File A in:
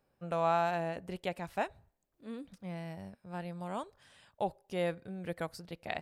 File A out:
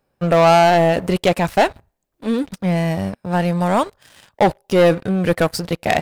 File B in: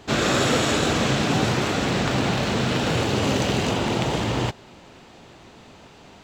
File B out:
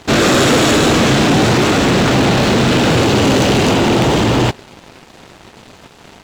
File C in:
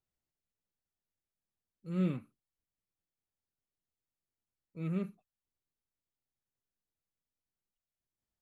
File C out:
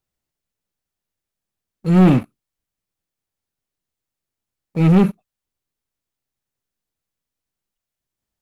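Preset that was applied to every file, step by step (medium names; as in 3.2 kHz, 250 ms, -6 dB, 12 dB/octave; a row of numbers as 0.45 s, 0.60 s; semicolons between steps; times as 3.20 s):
dynamic bell 320 Hz, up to +4 dB, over -38 dBFS, Q 1.4; waveshaping leveller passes 3; peak normalisation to -6 dBFS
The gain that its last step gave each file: +12.0 dB, +1.0 dB, +14.0 dB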